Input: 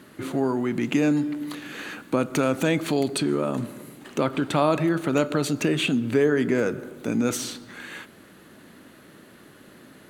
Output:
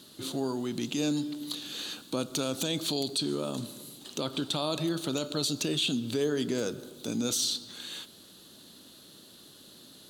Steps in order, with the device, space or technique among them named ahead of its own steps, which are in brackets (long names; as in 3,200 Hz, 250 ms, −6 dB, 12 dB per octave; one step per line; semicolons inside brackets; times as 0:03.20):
over-bright horn tweeter (high shelf with overshoot 2,800 Hz +10.5 dB, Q 3; brickwall limiter −11.5 dBFS, peak gain reduction 9 dB)
level −7.5 dB